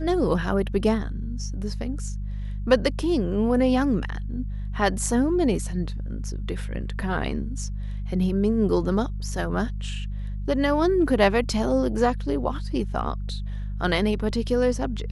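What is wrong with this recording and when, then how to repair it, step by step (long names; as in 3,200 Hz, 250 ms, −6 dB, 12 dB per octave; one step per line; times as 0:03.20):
mains hum 50 Hz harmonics 4 −30 dBFS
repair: hum removal 50 Hz, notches 4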